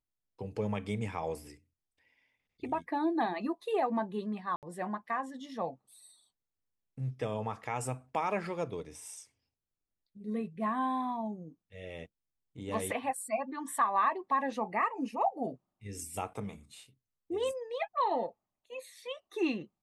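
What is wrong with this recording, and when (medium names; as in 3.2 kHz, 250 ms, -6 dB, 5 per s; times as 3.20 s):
4.56–4.63 s: dropout 68 ms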